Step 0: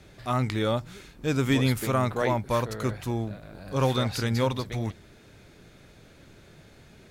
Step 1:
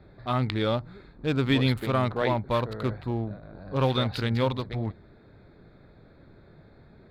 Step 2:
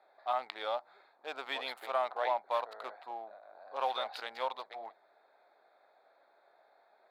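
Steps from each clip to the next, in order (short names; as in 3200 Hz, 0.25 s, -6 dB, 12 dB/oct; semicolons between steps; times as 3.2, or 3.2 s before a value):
Wiener smoothing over 15 samples; resonant high shelf 5000 Hz -7 dB, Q 3
ladder high-pass 650 Hz, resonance 60%; gain +1.5 dB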